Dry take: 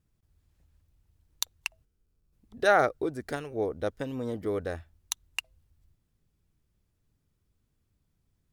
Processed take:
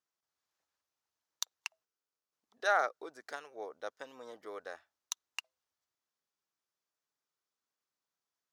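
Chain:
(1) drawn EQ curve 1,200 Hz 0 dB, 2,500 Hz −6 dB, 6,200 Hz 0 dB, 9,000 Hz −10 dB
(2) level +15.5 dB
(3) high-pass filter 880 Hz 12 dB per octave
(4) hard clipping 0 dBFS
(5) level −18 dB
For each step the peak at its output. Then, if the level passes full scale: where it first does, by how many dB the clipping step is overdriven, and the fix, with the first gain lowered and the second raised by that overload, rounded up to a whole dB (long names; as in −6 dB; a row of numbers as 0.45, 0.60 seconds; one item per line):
−11.5, +4.0, +5.0, 0.0, −18.0 dBFS
step 2, 5.0 dB
step 2 +10.5 dB, step 5 −13 dB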